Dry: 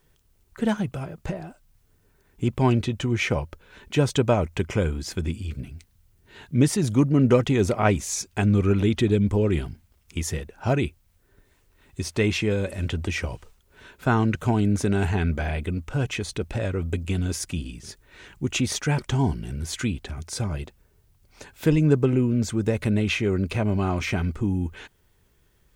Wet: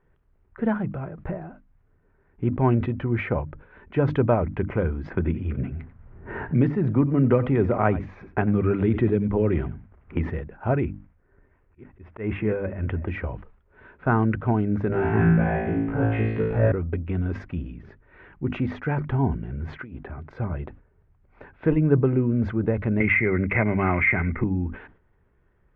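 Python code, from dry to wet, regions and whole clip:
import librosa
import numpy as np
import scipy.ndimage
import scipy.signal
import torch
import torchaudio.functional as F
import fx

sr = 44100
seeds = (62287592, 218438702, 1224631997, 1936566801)

y = fx.chain(x, sr, fx.env_lowpass(base_hz=1700.0, full_db=-16.0),
    fx.echo_single(ms=89, db=-18.0),
    fx.band_squash(depth_pct=70), at=(5.1, 10.3))
y = fx.chain(y, sr, fx.reverse_delay(ms=519, wet_db=-12.5),
    fx.auto_swell(attack_ms=149.0),
    fx.savgol(points=25), at=(10.8, 13.08))
y = fx.chain(y, sr, fx.gaussian_blur(sigma=2.0),
    fx.room_flutter(wall_m=3.1, rt60_s=0.95), at=(14.88, 16.72))
y = fx.chain(y, sr, fx.highpass(hz=750.0, slope=6),
    fx.tilt_eq(slope=-3.5),
    fx.over_compress(threshold_db=-36.0, ratio=-1.0), at=(19.74, 20.31))
y = fx.chain(y, sr, fx.lowpass_res(hz=2100.0, q=14.0),
    fx.band_squash(depth_pct=70), at=(23.0, 24.44))
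y = scipy.signal.sosfilt(scipy.signal.butter(4, 1900.0, 'lowpass', fs=sr, output='sos'), y)
y = fx.hum_notches(y, sr, base_hz=50, count=6)
y = fx.sustainer(y, sr, db_per_s=130.0)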